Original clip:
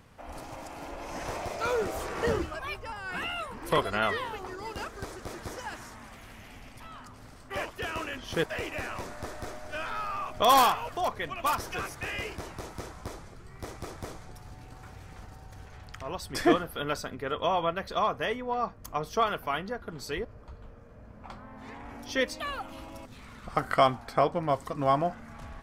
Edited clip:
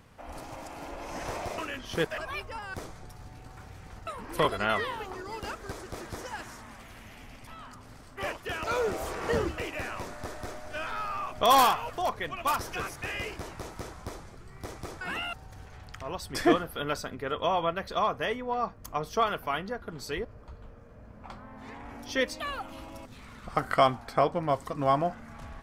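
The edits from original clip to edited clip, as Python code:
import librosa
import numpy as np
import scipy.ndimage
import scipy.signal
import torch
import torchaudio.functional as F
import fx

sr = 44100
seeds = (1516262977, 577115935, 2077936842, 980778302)

y = fx.edit(x, sr, fx.swap(start_s=1.58, length_s=0.94, other_s=7.97, other_length_s=0.6),
    fx.swap(start_s=3.08, length_s=0.32, other_s=14.0, other_length_s=1.33), tone=tone)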